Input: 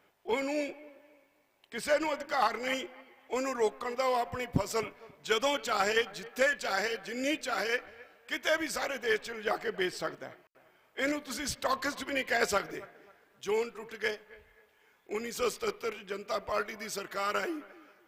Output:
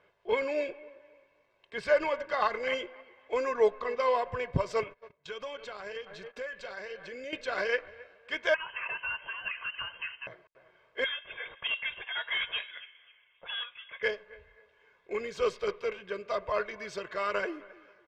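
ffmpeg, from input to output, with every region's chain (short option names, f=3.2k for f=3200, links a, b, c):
-filter_complex "[0:a]asettb=1/sr,asplit=3[a][b][c];[a]atrim=end=3.514[d];[b]atrim=start=3.51:end=4.08,asetpts=PTS-STARTPTS,afade=t=in:d=0.004:c=qsin,afade=t=out:st=0.566:d=0.004:c=qsin,lowpass=f=7.3k:w=0.5412,lowpass=f=7.3k:w=1.3066,aecho=1:1:4.6:0.35,atrim=end_sample=25137[e];[c]atrim=start=4.076[f];[d][e]acrossfade=d=0.004:c1=hsin:c2=qsin[g];[g][f]acrossfade=d=0.004:c1=qsin:c2=hsin,asettb=1/sr,asplit=3[h][i][j];[h]atrim=end=4.834[k];[i]atrim=start=4.83:end=7.33,asetpts=PTS-STARTPTS,afade=t=in:d=0.004:c=qsin,afade=t=out:st=2.496:d=0.004:c=qsin,agate=range=-18dB:threshold=-52dB:ratio=16:release=100:detection=peak,acompressor=threshold=-40dB:ratio=4:attack=3.2:release=140:knee=1:detection=peak[l];[j]atrim=start=7.326[m];[k][l]acrossfade=d=0.004:c1=hsin:c2=qsin[n];[n][m]acrossfade=d=0.004:c1=qsin:c2=hsin,asettb=1/sr,asplit=3[o][p][q];[o]atrim=end=8.544[r];[p]atrim=start=8.54:end=10.27,asetpts=PTS-STARTPTS,afade=t=in:d=0.004:c=qsin,afade=t=out:st=1.726:d=0.004:c=qsin,acompressor=threshold=-32dB:ratio=5:attack=3.2:release=140:knee=1:detection=peak,lowpass=f=2.7k:t=q:w=0.5098,lowpass=f=2.7k:t=q:w=0.6013,lowpass=f=2.7k:t=q:w=0.9,lowpass=f=2.7k:t=q:w=2.563,afreqshift=-3200[s];[q]atrim=start=10.266[t];[r][s]acrossfade=d=0.004:c1=hsin:c2=qsin[u];[u][t]acrossfade=d=0.004:c1=qsin:c2=hsin,asettb=1/sr,asplit=3[v][w][x];[v]atrim=end=11.044[y];[w]atrim=start=11.04:end=14.03,asetpts=PTS-STARTPTS,afade=t=in:d=0.004:c=qsin,afade=t=out:st=2.986:d=0.004:c=qsin,highpass=520,asoftclip=type=hard:threshold=-28dB,lowpass=f=3.2k:t=q:w=0.5098,lowpass=f=3.2k:t=q:w=0.6013,lowpass=f=3.2k:t=q:w=0.9,lowpass=f=3.2k:t=q:w=2.563,afreqshift=-3800[z];[x]atrim=start=14.026[aa];[y][z]acrossfade=d=0.004:c1=hsin:c2=qsin[ab];[ab][aa]acrossfade=d=0.004:c1=qsin:c2=hsin,lowpass=3.5k,aecho=1:1:1.9:0.57"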